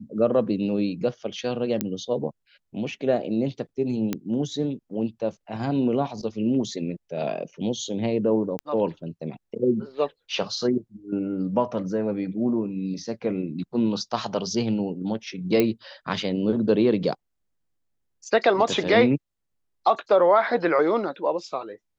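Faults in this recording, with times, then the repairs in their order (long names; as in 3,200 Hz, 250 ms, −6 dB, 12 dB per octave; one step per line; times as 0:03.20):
0:01.81: click −9 dBFS
0:04.13: click −12 dBFS
0:08.59: click −16 dBFS
0:15.60: click −8 dBFS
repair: click removal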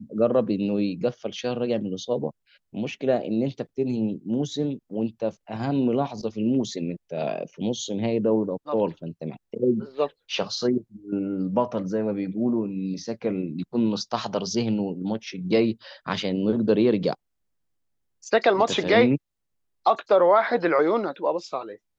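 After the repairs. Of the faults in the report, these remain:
0:04.13: click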